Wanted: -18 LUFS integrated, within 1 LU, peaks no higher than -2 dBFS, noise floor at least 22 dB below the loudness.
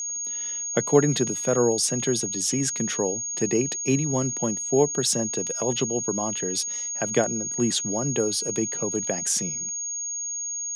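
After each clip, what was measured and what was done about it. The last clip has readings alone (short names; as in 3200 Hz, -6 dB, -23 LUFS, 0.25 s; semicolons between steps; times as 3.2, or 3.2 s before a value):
steady tone 6600 Hz; tone level -28 dBFS; loudness -24.0 LUFS; peak -5.0 dBFS; loudness target -18.0 LUFS
-> notch 6600 Hz, Q 30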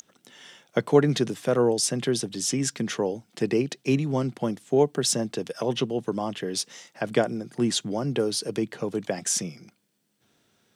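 steady tone none; loudness -26.0 LUFS; peak -5.5 dBFS; loudness target -18.0 LUFS
-> gain +8 dB; limiter -2 dBFS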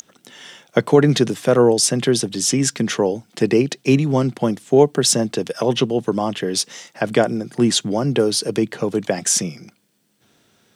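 loudness -18.5 LUFS; peak -2.0 dBFS; noise floor -62 dBFS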